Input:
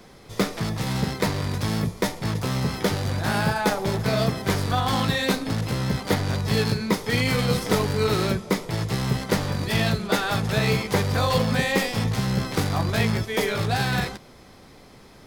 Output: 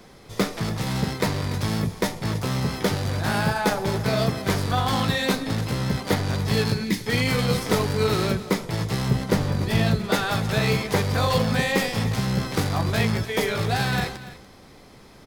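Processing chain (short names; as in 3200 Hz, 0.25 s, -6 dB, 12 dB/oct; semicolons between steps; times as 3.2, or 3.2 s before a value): 6.84–7.06 spectral gain 370–1600 Hz -16 dB; 9.08–10.04 tilt shelf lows +3 dB, about 670 Hz; echo 0.289 s -16 dB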